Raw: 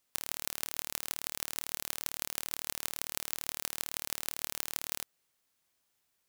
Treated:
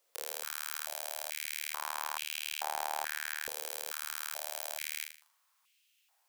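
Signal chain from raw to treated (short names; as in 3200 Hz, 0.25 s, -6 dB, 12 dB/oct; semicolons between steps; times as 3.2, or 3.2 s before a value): 1.71–3.44 tilt shelf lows +7.5 dB, about 1500 Hz; in parallel at -1 dB: vocal rider; on the sum: limiter -8 dBFS, peak gain reduction 9.5 dB; on a send: flutter echo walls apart 6.7 m, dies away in 0.44 s; on the sum: stepped high-pass 2.3 Hz 500–2700 Hz; gain -4 dB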